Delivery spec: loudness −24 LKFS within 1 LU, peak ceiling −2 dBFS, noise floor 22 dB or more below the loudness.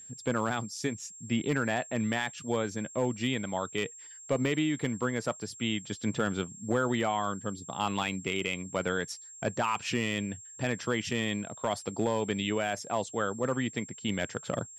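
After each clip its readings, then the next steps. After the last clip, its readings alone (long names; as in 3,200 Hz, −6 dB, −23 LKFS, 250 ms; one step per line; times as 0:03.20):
share of clipped samples 0.2%; peaks flattened at −19.0 dBFS; interfering tone 7,500 Hz; level of the tone −46 dBFS; integrated loudness −32.0 LKFS; sample peak −19.0 dBFS; target loudness −24.0 LKFS
→ clipped peaks rebuilt −19 dBFS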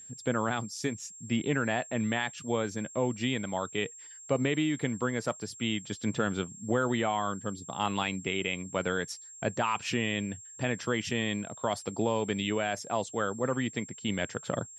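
share of clipped samples 0.0%; interfering tone 7,500 Hz; level of the tone −46 dBFS
→ notch filter 7,500 Hz, Q 30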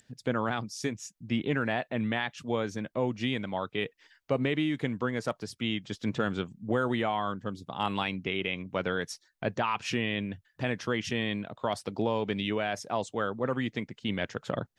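interfering tone none found; integrated loudness −32.0 LKFS; sample peak −14.5 dBFS; target loudness −24.0 LKFS
→ level +8 dB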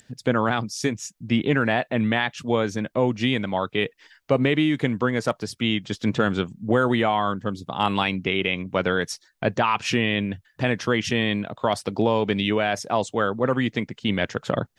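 integrated loudness −24.0 LKFS; sample peak −6.5 dBFS; background noise floor −63 dBFS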